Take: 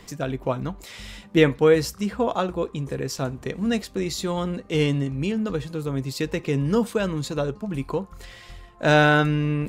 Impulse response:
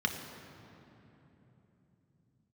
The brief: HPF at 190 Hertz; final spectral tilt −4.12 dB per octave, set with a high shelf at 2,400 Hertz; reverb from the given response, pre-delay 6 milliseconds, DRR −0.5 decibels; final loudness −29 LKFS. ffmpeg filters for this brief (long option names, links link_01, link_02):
-filter_complex "[0:a]highpass=190,highshelf=frequency=2400:gain=9,asplit=2[link_01][link_02];[1:a]atrim=start_sample=2205,adelay=6[link_03];[link_02][link_03]afir=irnorm=-1:irlink=0,volume=-6.5dB[link_04];[link_01][link_04]amix=inputs=2:normalize=0,volume=-9.5dB"